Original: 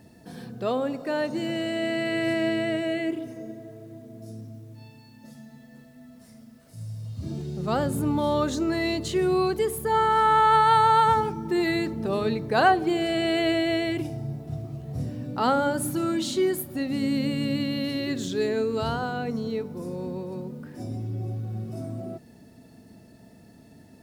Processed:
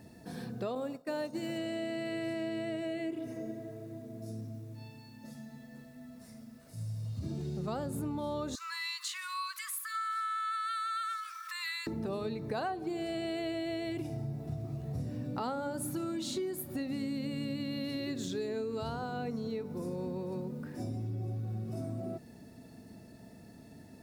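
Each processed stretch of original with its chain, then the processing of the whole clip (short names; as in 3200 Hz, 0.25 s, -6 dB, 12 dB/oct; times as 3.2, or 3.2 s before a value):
0.75–1.58 expander -27 dBFS + high shelf 7300 Hz +9 dB
8.55–11.87 brick-wall FIR high-pass 990 Hz + upward compressor, threshold -33 dBFS
whole clip: notch 3100 Hz, Q 14; dynamic EQ 1800 Hz, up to -5 dB, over -39 dBFS, Q 1.4; compressor, threshold -32 dBFS; gain -1.5 dB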